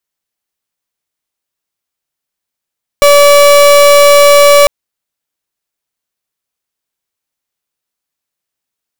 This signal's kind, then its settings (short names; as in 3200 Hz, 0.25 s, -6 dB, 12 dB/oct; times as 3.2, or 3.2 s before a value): pulse 575 Hz, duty 36% -4 dBFS 1.65 s